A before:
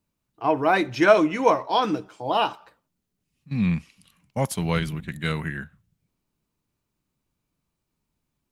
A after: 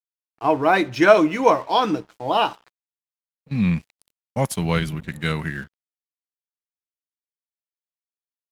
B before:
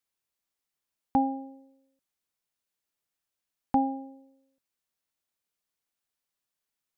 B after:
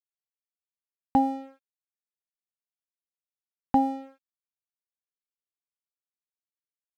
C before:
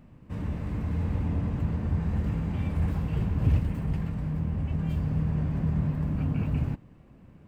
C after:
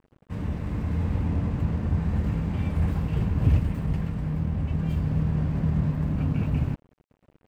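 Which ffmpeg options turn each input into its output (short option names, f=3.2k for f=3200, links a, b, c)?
-af "aeval=exprs='sgn(val(0))*max(abs(val(0))-0.00376,0)':c=same,volume=3dB"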